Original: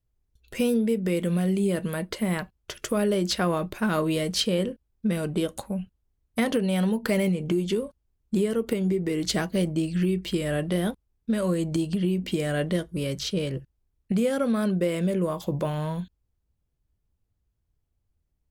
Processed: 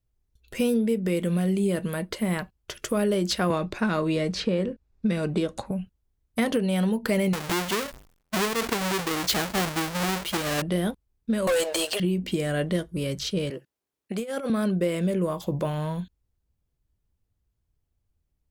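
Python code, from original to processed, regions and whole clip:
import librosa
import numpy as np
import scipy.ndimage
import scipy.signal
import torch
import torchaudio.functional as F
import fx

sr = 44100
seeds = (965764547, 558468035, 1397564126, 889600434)

y = fx.chain(x, sr, fx.lowpass(hz=5700.0, slope=12),
    fx.notch(hz=3100.0, q=8.9),
    fx.band_squash(depth_pct=70), at=(3.5, 5.71))
y = fx.chain(y, sr, fx.halfwave_hold(),
    fx.low_shelf(hz=470.0, db=-11.0),
    fx.sustainer(db_per_s=110.0), at=(7.33, 10.62))
y = fx.chain(y, sr, fx.cheby1_highpass(hz=510.0, order=4),
    fx.leveller(passes=5), at=(11.47, 12.0))
y = fx.chain(y, sr, fx.highpass(hz=350.0, slope=12),
    fx.over_compress(threshold_db=-29.0, ratio=-0.5), at=(13.5, 14.5))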